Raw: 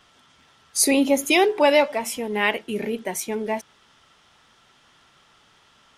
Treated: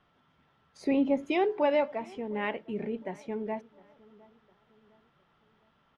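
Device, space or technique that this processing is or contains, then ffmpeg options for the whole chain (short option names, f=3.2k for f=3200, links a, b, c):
phone in a pocket: -filter_complex "[0:a]lowpass=3.7k,equalizer=f=160:t=o:w=0.49:g=5.5,highshelf=f=2.1k:g=-12,asettb=1/sr,asplit=3[a][b][c];[a]atrim=end=0.774[d];[b]atrim=start=0.77:end=1.23,asetpts=PTS-STARTPTS,afade=t=in:d=0.004:c=qsin,afade=t=out:st=0.456:d=0.004:c=qsin,bass=f=250:g=3,treble=f=4k:g=-5[e];[c]atrim=start=1.226[f];[d][e]acrossfade=d=0.004:c1=hsin:c2=qsin[g];[g][f]acrossfade=d=0.004:c1=qsin:c2=hsin,asplit=2[h][i];[i]adelay=709,lowpass=f=1.7k:p=1,volume=-23dB,asplit=2[j][k];[k]adelay=709,lowpass=f=1.7k:p=1,volume=0.47,asplit=2[l][m];[m]adelay=709,lowpass=f=1.7k:p=1,volume=0.47[n];[h][j][l][n]amix=inputs=4:normalize=0,volume=-7.5dB"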